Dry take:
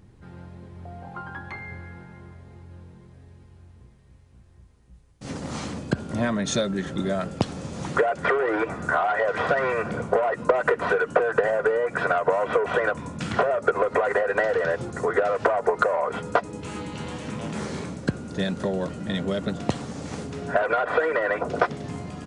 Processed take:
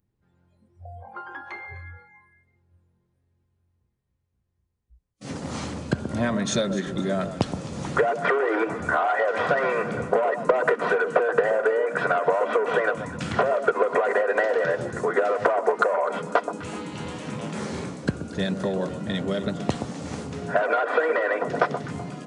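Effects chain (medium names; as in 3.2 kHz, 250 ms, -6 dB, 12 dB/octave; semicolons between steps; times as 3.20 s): echo whose repeats swap between lows and highs 126 ms, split 1.2 kHz, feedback 53%, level -9 dB; spectral noise reduction 23 dB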